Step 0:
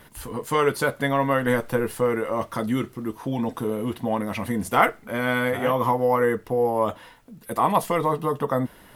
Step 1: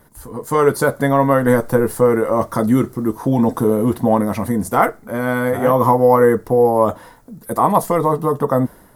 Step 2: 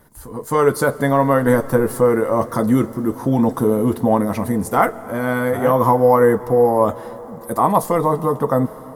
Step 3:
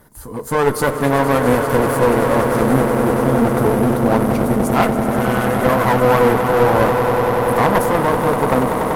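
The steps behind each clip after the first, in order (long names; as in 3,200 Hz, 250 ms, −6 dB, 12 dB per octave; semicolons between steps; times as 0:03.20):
parametric band 2,800 Hz −15 dB 1.1 octaves; automatic gain control gain up to 12 dB
comb and all-pass reverb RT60 4.8 s, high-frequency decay 0.9×, pre-delay 90 ms, DRR 17 dB; level −1 dB
echo that builds up and dies away 96 ms, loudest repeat 8, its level −11.5 dB; asymmetric clip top −24.5 dBFS; level +2.5 dB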